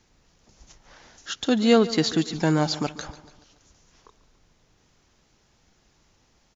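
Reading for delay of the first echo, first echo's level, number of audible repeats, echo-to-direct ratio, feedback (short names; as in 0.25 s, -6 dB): 0.143 s, -17.0 dB, 4, -15.5 dB, 53%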